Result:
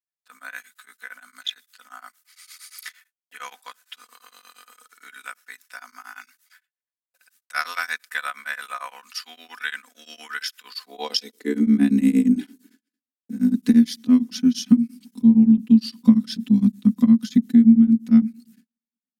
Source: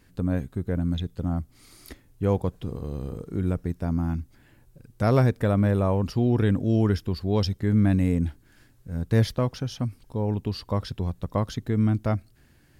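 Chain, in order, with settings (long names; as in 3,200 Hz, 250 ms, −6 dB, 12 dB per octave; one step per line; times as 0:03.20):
drawn EQ curve 130 Hz 0 dB, 220 Hz +14 dB, 500 Hz −14 dB, 2,000 Hz +6 dB, 6,100 Hz +11 dB
noise gate −45 dBFS, range −51 dB
high-pass filter sweep 580 Hz → 200 Hz, 0:06.52–0:10.30
downward compressor 16 to 1, threshold −17 dBFS, peak gain reduction 17 dB
time stretch by overlap-add 1.5×, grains 24 ms
high-pass filter sweep 1,400 Hz → 190 Hz, 0:10.62–0:11.87
tremolo along a rectified sine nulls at 8.7 Hz
level +2.5 dB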